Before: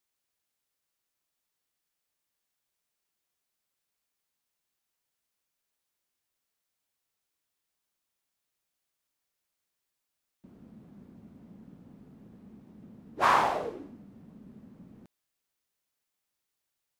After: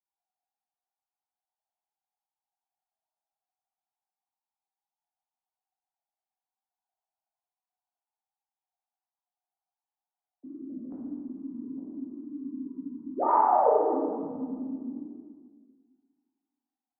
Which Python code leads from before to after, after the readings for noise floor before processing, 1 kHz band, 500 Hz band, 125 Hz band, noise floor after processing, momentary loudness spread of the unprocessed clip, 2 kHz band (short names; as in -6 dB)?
-85 dBFS, +4.0 dB, +10.0 dB, n/a, under -85 dBFS, 17 LU, -16.5 dB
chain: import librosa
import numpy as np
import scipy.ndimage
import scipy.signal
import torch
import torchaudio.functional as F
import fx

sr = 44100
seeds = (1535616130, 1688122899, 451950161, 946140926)

y = fx.sine_speech(x, sr)
y = scipy.signal.sosfilt(scipy.signal.bessel(4, 510.0, 'lowpass', norm='mag', fs=sr, output='sos'), y)
y = fx.rev_plate(y, sr, seeds[0], rt60_s=1.8, hf_ratio=0.9, predelay_ms=0, drr_db=-7.0)
y = F.gain(torch.from_numpy(y), 6.5).numpy()